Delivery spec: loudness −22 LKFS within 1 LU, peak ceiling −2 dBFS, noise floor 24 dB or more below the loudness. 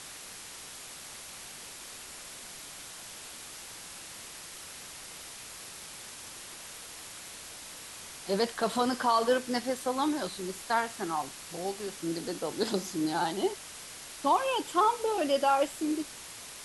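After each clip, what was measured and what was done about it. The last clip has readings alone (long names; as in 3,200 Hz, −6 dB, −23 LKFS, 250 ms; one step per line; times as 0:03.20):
background noise floor −46 dBFS; target noise floor −57 dBFS; integrated loudness −33.0 LKFS; sample peak −14.5 dBFS; target loudness −22.0 LKFS
→ noise reduction from a noise print 11 dB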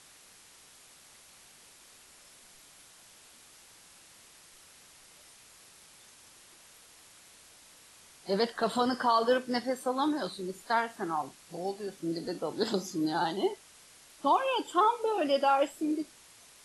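background noise floor −57 dBFS; integrated loudness −30.5 LKFS; sample peak −14.5 dBFS; target loudness −22.0 LKFS
→ level +8.5 dB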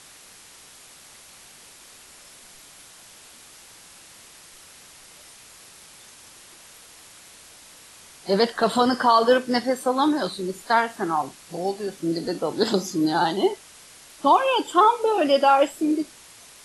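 integrated loudness −22.0 LKFS; sample peak −6.0 dBFS; background noise floor −48 dBFS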